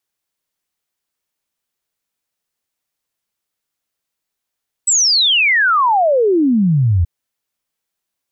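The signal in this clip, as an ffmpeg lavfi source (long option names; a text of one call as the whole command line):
ffmpeg -f lavfi -i "aevalsrc='0.316*clip(min(t,2.18-t)/0.01,0,1)*sin(2*PI*8100*2.18/log(80/8100)*(exp(log(80/8100)*t/2.18)-1))':duration=2.18:sample_rate=44100" out.wav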